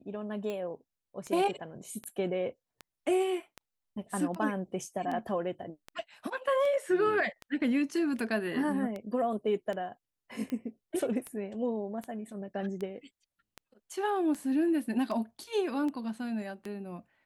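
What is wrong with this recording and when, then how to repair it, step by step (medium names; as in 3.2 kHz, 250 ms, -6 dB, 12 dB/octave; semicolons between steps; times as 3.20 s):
tick 78 rpm -25 dBFS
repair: de-click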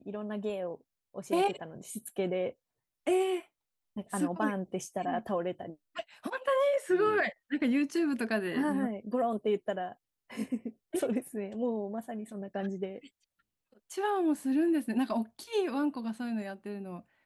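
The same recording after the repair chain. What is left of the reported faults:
nothing left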